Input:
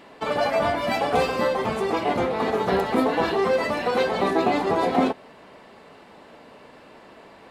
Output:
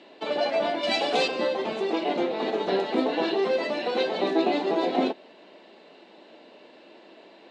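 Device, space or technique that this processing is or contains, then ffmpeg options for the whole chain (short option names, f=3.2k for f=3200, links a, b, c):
television speaker: -filter_complex "[0:a]highpass=f=190:w=0.5412,highpass=f=190:w=1.3066,equalizer=f=340:t=q:w=4:g=9,equalizer=f=610:t=q:w=4:g=5,equalizer=f=1.2k:t=q:w=4:g=-6,equalizer=f=2.8k:t=q:w=4:g=6,equalizer=f=3.9k:t=q:w=4:g=9,lowpass=f=7.1k:w=0.5412,lowpass=f=7.1k:w=1.3066,asettb=1/sr,asplit=3[a][b][c];[a]atrim=end=0.834[d];[b]atrim=start=0.83:end=1.28,asetpts=PTS-STARTPTS,afade=t=in:d=0.004:c=qsin,afade=t=out:st=0.446:d=0.004:c=qsin,highshelf=f=3.2k:g=11.5[e];[c]atrim=start=1.276[f];[d][e]acrossfade=d=0.004:c1=hsin:c2=qsin[g];[g][f]acrossfade=d=0.004:c1=qsin:c2=hsin,volume=-6dB"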